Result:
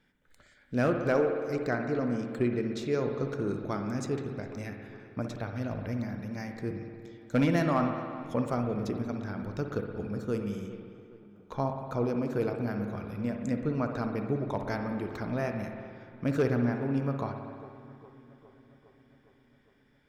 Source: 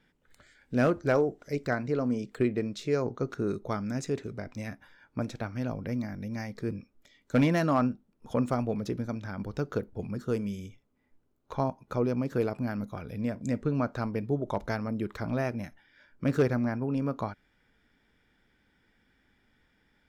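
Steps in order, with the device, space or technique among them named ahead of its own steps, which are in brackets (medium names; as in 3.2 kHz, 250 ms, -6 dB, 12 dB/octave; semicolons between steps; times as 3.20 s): dub delay into a spring reverb (filtered feedback delay 409 ms, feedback 66%, low-pass 2.9 kHz, level -19 dB; spring tank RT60 2 s, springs 58 ms, chirp 35 ms, DRR 4.5 dB); trim -2 dB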